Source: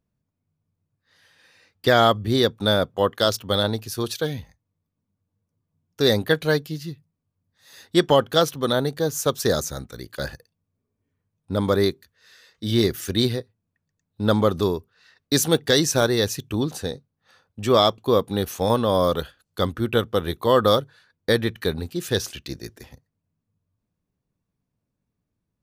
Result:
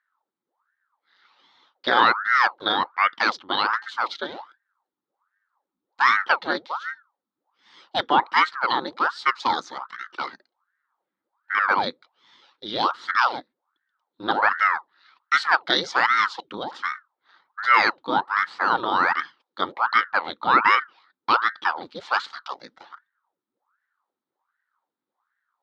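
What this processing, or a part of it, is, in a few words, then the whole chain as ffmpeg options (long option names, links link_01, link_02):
voice changer toy: -af "aeval=exprs='val(0)*sin(2*PI*910*n/s+910*0.9/1.3*sin(2*PI*1.3*n/s))':channel_layout=same,highpass=410,equalizer=frequency=430:width_type=q:width=4:gain=-7,equalizer=frequency=640:width_type=q:width=4:gain=-9,equalizer=frequency=900:width_type=q:width=4:gain=4,equalizer=frequency=1300:width_type=q:width=4:gain=5,equalizer=frequency=2600:width_type=q:width=4:gain=-8,equalizer=frequency=3900:width_type=q:width=4:gain=4,lowpass=frequency=4100:width=0.5412,lowpass=frequency=4100:width=1.3066,volume=2.5dB"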